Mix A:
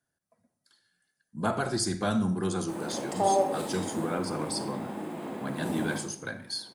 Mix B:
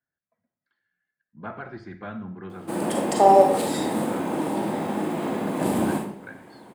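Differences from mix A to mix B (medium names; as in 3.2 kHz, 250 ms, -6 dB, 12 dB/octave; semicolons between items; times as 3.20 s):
speech: add four-pole ladder low-pass 2.5 kHz, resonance 45%; background +10.0 dB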